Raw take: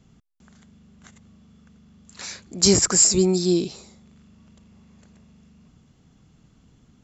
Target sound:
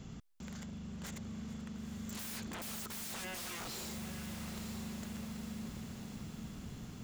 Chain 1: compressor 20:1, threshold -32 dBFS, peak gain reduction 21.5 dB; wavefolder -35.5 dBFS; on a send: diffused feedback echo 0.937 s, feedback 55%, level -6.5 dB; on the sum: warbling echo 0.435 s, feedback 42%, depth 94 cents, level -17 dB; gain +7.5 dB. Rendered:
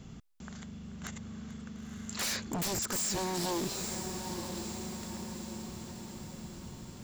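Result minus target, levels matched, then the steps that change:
wavefolder: distortion -12 dB
change: wavefolder -47 dBFS

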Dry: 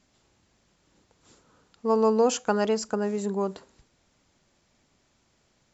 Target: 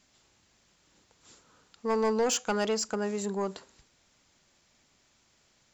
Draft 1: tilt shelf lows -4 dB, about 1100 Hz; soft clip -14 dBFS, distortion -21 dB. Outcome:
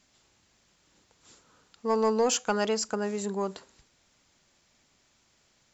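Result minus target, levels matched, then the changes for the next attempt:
soft clip: distortion -8 dB
change: soft clip -20.5 dBFS, distortion -13 dB

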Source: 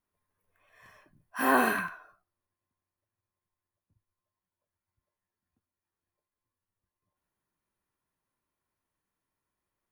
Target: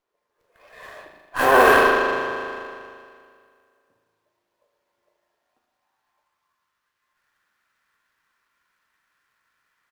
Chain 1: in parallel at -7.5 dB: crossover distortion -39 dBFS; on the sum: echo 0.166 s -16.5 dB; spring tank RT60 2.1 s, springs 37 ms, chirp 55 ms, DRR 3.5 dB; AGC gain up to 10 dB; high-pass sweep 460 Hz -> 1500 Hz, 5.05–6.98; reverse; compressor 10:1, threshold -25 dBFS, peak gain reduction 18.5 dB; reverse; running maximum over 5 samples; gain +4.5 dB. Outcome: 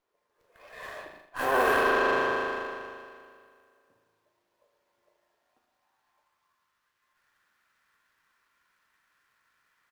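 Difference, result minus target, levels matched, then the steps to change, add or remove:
compressor: peak gain reduction +10.5 dB
change: compressor 10:1, threshold -13.5 dBFS, peak gain reduction 8 dB

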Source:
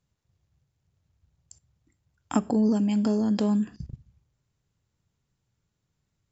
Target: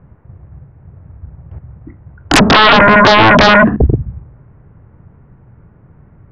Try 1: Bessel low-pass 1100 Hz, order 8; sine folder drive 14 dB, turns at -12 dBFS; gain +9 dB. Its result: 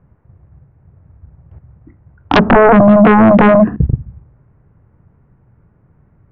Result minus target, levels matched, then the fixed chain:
sine folder: distortion -15 dB
Bessel low-pass 1100 Hz, order 8; sine folder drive 22 dB, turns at -12 dBFS; gain +9 dB

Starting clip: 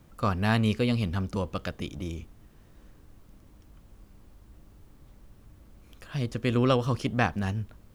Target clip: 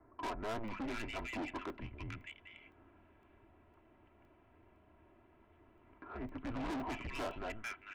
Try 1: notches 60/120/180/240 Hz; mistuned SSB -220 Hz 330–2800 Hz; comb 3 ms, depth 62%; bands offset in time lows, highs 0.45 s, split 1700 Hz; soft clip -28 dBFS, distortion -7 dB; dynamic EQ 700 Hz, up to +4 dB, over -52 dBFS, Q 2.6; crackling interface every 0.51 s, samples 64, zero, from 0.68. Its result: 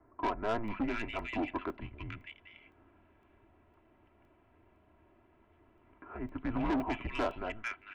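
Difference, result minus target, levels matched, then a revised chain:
soft clip: distortion -5 dB
notches 60/120/180/240 Hz; mistuned SSB -220 Hz 330–2800 Hz; comb 3 ms, depth 62%; bands offset in time lows, highs 0.45 s, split 1700 Hz; soft clip -38 dBFS, distortion -2 dB; dynamic EQ 700 Hz, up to +4 dB, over -52 dBFS, Q 2.6; crackling interface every 0.51 s, samples 64, zero, from 0.68

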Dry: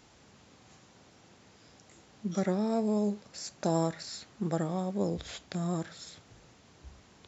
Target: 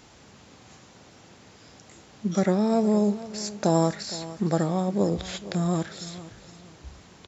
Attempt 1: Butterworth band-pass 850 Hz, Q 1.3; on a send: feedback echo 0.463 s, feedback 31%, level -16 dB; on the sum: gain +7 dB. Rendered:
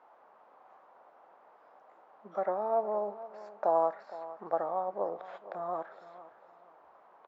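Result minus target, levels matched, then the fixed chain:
1000 Hz band +7.5 dB
on a send: feedback echo 0.463 s, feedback 31%, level -16 dB; on the sum: gain +7 dB

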